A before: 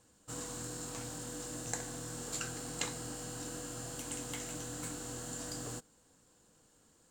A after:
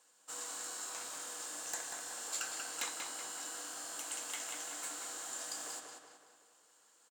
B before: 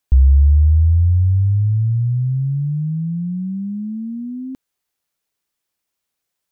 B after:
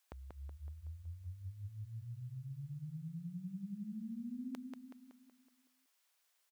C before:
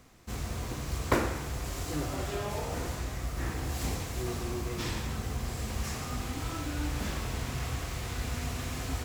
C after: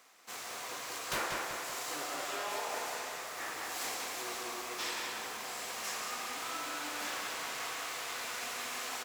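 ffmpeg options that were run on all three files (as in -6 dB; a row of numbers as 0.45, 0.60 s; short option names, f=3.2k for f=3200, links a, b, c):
-filter_complex "[0:a]highpass=750,aeval=exprs='0.0355*(abs(mod(val(0)/0.0355+3,4)-2)-1)':c=same,asplit=2[a][b];[b]adelay=187,lowpass=f=4.6k:p=1,volume=-3.5dB,asplit=2[c][d];[d]adelay=187,lowpass=f=4.6k:p=1,volume=0.52,asplit=2[e][f];[f]adelay=187,lowpass=f=4.6k:p=1,volume=0.52,asplit=2[g][h];[h]adelay=187,lowpass=f=4.6k:p=1,volume=0.52,asplit=2[i][j];[j]adelay=187,lowpass=f=4.6k:p=1,volume=0.52,asplit=2[k][l];[l]adelay=187,lowpass=f=4.6k:p=1,volume=0.52,asplit=2[m][n];[n]adelay=187,lowpass=f=4.6k:p=1,volume=0.52[o];[a][c][e][g][i][k][m][o]amix=inputs=8:normalize=0,volume=1dB"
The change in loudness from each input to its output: +0.5, -29.5, -3.0 LU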